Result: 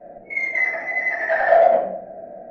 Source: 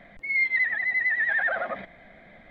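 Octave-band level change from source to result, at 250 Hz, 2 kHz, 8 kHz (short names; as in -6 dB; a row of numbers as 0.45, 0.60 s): +8.0 dB, +1.0 dB, n/a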